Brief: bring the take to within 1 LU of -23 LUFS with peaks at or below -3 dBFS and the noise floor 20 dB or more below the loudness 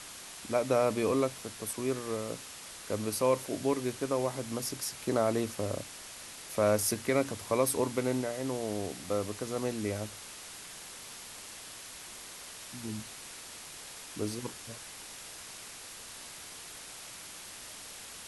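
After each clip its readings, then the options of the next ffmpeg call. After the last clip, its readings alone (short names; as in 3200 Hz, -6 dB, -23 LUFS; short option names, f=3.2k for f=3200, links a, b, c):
noise floor -47 dBFS; noise floor target -55 dBFS; loudness -34.5 LUFS; peak -14.5 dBFS; loudness target -23.0 LUFS
-> -af "afftdn=nr=8:nf=-47"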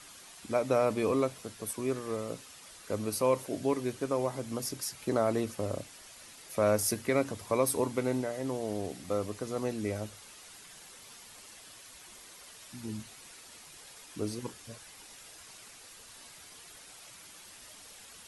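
noise floor -52 dBFS; noise floor target -53 dBFS
-> -af "afftdn=nr=6:nf=-52"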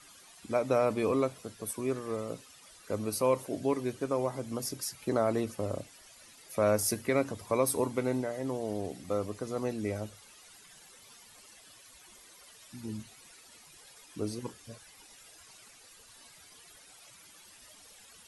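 noise floor -56 dBFS; loudness -32.5 LUFS; peak -14.5 dBFS; loudness target -23.0 LUFS
-> -af "volume=9.5dB"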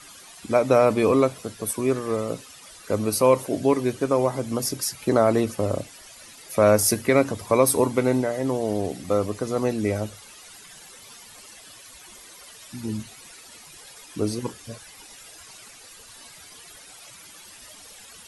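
loudness -23.0 LUFS; peak -5.0 dBFS; noise floor -47 dBFS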